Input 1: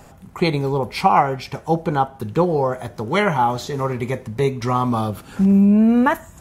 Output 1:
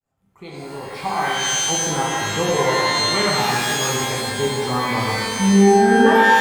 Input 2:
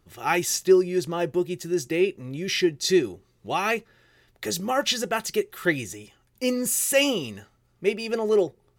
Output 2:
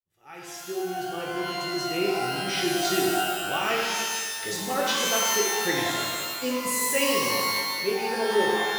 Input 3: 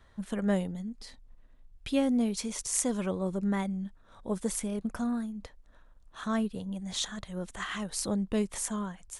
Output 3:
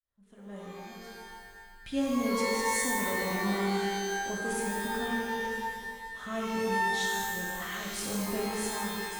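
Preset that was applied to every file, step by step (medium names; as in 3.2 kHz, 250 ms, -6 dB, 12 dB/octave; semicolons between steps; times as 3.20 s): fade-in on the opening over 2.05 s; pitch-shifted reverb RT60 1.7 s, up +12 st, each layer -2 dB, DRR -3 dB; trim -7 dB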